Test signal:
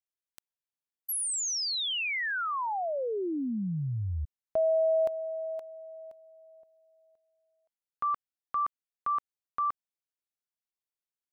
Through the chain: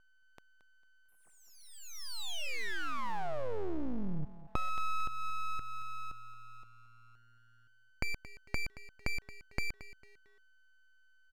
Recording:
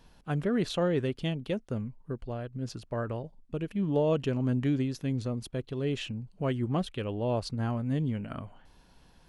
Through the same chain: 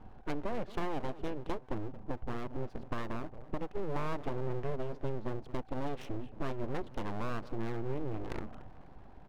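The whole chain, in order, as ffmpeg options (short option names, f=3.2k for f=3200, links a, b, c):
-af "acompressor=threshold=-40dB:ratio=4:attack=18:release=262:detection=rms,aeval=exprs='val(0)+0.000447*sin(2*PI*760*n/s)':c=same,adynamicsmooth=sensitivity=5.5:basefreq=990,aecho=1:1:225|450|675:0.158|0.046|0.0133,aeval=exprs='abs(val(0))':c=same,volume=8.5dB"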